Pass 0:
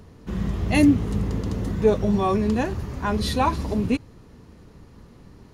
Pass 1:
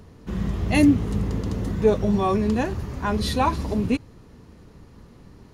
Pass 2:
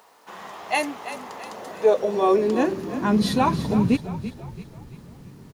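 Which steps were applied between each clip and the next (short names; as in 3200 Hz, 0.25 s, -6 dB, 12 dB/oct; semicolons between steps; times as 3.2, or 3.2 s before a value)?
nothing audible
requantised 10-bit, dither none; high-pass sweep 820 Hz -> 140 Hz, 1.44–3.59; frequency-shifting echo 0.335 s, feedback 46%, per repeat -35 Hz, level -12 dB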